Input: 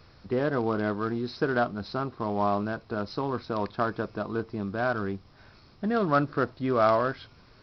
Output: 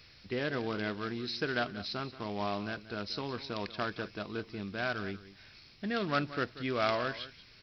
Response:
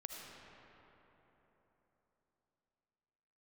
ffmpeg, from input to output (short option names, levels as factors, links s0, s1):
-filter_complex "[0:a]highshelf=f=1600:t=q:w=1.5:g=11,asplit=2[s0][s1];[s1]aecho=0:1:184:0.168[s2];[s0][s2]amix=inputs=2:normalize=0,volume=0.422"